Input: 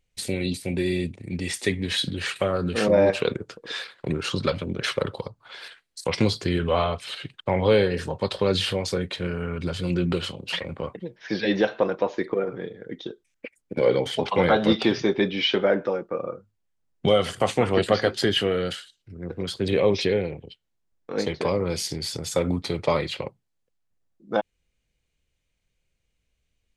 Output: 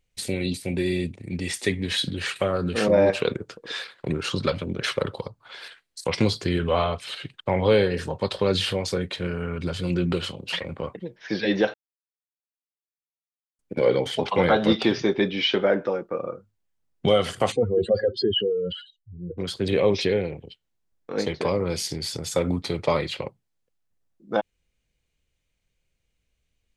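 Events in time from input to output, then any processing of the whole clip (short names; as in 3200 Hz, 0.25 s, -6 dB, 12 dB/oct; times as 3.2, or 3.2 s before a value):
11.74–13.59 mute
17.52–19.38 spectral contrast raised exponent 2.9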